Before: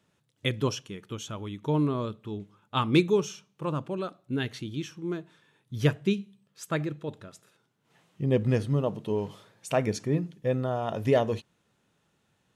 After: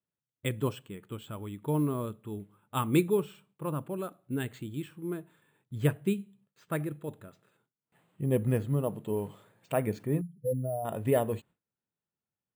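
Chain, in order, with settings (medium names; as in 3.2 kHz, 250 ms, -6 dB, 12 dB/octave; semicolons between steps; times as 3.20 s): 10.21–10.85 s: spectral contrast enhancement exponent 2.6; gate with hold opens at -56 dBFS; distance through air 250 m; careless resampling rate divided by 4×, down filtered, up hold; trim -2.5 dB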